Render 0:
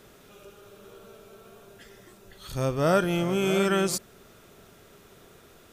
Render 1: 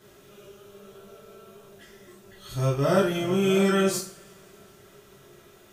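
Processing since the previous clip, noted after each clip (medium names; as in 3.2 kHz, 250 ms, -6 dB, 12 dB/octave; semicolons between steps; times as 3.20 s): two-slope reverb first 0.39 s, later 2.8 s, from -28 dB, DRR -6 dB; trim -7 dB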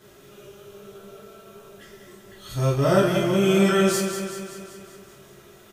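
feedback delay 192 ms, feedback 59%, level -8 dB; trim +2.5 dB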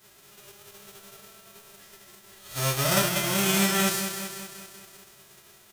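formants flattened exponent 0.3; trim -5 dB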